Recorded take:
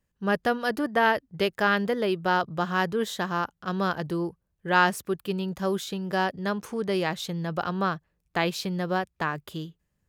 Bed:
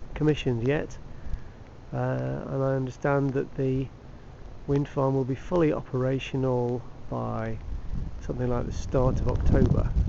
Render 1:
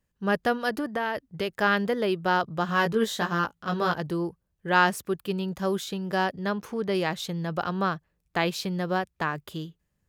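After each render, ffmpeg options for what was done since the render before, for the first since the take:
ffmpeg -i in.wav -filter_complex "[0:a]asettb=1/sr,asplit=3[link_01][link_02][link_03];[link_01]atrim=end=0.694[link_04];[link_02]atrim=start=0.69:end=1.62,asetpts=PTS-STARTPTS,afade=type=in:duration=0.004:curve=qsin,afade=type=out:start_time=0.926:duration=0.004:curve=qsin,acompressor=threshold=-24dB:ratio=6:attack=3.2:release=140:knee=1:detection=peak[link_05];[link_03]atrim=start=1.616[link_06];[link_04][link_05]acrossfade=duration=0.004:curve1=hsin:curve2=qsin[link_07];[link_07][link_06]acrossfade=duration=0.004:curve1=qsin:curve2=hsin,asettb=1/sr,asplit=3[link_08][link_09][link_10];[link_08]atrim=end=2.674[link_11];[link_09]atrim=start=2.67:end=3.94,asetpts=PTS-STARTPTS,afade=type=in:duration=0.004:curve=qsin,afade=type=out:start_time=1.266:duration=0.004:curve=qsin,asplit=2[link_12][link_13];[link_13]adelay=18,volume=-2.5dB[link_14];[link_12][link_14]amix=inputs=2:normalize=0,atrim=end_sample=56007[link_15];[link_10]atrim=start=3.936[link_16];[link_11][link_15]acrossfade=duration=0.004:curve1=hsin:curve2=qsin[link_17];[link_17][link_16]acrossfade=duration=0.004:curve1=qsin:curve2=hsin,asettb=1/sr,asplit=3[link_18][link_19][link_20];[link_18]atrim=end=6.454[link_21];[link_19]atrim=start=6.45:end=6.95,asetpts=PTS-STARTPTS,afade=type=in:duration=0.004:curve=qsin,afade=type=out:start_time=0.496:duration=0.004:curve=qsin,equalizer=frequency=8500:width_type=o:width=0.77:gain=-8[link_22];[link_20]atrim=start=6.946[link_23];[link_21][link_22]acrossfade=duration=0.004:curve1=hsin:curve2=qsin[link_24];[link_24][link_23]acrossfade=duration=0.004:curve1=qsin:curve2=hsin" out.wav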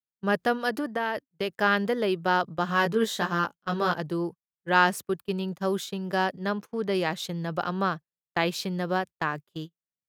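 ffmpeg -i in.wav -af "highpass=130,agate=range=-28dB:threshold=-35dB:ratio=16:detection=peak" out.wav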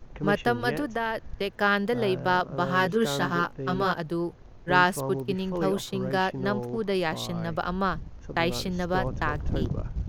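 ffmpeg -i in.wav -i bed.wav -filter_complex "[1:a]volume=-7dB[link_01];[0:a][link_01]amix=inputs=2:normalize=0" out.wav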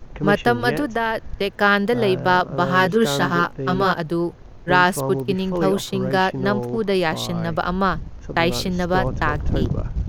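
ffmpeg -i in.wav -af "volume=7dB,alimiter=limit=-2dB:level=0:latency=1" out.wav

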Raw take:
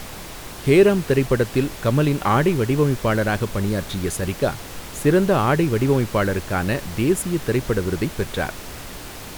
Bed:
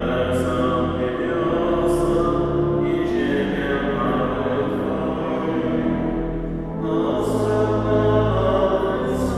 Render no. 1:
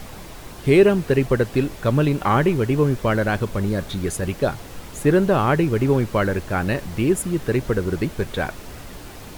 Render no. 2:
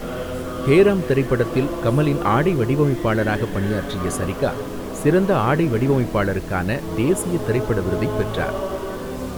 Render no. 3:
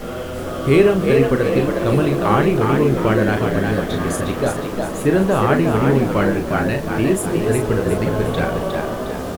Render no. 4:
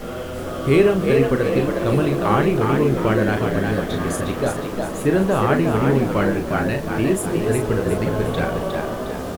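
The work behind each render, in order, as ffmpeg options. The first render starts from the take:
ffmpeg -i in.wav -af "afftdn=noise_reduction=6:noise_floor=-36" out.wav
ffmpeg -i in.wav -i bed.wav -filter_complex "[1:a]volume=-7.5dB[link_01];[0:a][link_01]amix=inputs=2:normalize=0" out.wav
ffmpeg -i in.wav -filter_complex "[0:a]asplit=2[link_01][link_02];[link_02]adelay=37,volume=-6.5dB[link_03];[link_01][link_03]amix=inputs=2:normalize=0,asplit=6[link_04][link_05][link_06][link_07][link_08][link_09];[link_05]adelay=359,afreqshift=62,volume=-5dB[link_10];[link_06]adelay=718,afreqshift=124,volume=-12.3dB[link_11];[link_07]adelay=1077,afreqshift=186,volume=-19.7dB[link_12];[link_08]adelay=1436,afreqshift=248,volume=-27dB[link_13];[link_09]adelay=1795,afreqshift=310,volume=-34.3dB[link_14];[link_04][link_10][link_11][link_12][link_13][link_14]amix=inputs=6:normalize=0" out.wav
ffmpeg -i in.wav -af "volume=-2dB" out.wav

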